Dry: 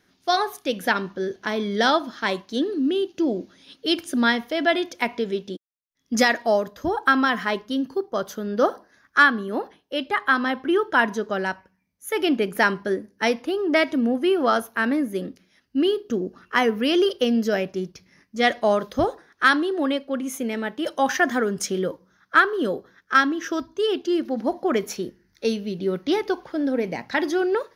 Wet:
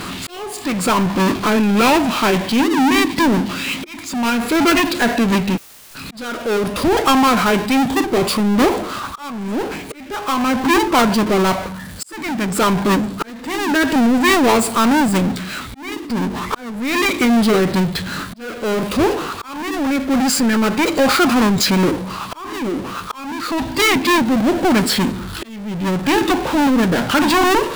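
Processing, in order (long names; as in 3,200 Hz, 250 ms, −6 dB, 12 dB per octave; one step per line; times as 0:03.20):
power curve on the samples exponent 0.35
volume swells 751 ms
formants moved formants −5 semitones
level −1 dB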